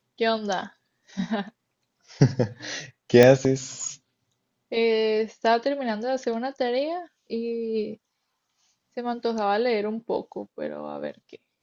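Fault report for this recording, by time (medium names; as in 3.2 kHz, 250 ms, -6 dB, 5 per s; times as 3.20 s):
3.23 s: pop -4 dBFS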